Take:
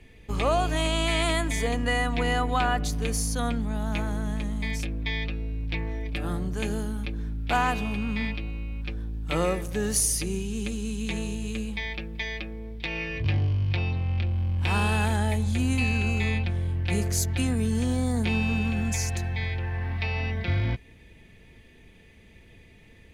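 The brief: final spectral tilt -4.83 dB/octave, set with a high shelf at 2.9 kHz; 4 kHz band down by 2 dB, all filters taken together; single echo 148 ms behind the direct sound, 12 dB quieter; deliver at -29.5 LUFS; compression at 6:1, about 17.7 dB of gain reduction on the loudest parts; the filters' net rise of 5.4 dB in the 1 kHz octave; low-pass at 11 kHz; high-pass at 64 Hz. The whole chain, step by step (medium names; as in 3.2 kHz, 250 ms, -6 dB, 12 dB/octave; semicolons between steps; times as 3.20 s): high-pass 64 Hz; low-pass 11 kHz; peaking EQ 1 kHz +7 dB; treble shelf 2.9 kHz +7 dB; peaking EQ 4 kHz -9 dB; compression 6:1, threshold -36 dBFS; delay 148 ms -12 dB; trim +9 dB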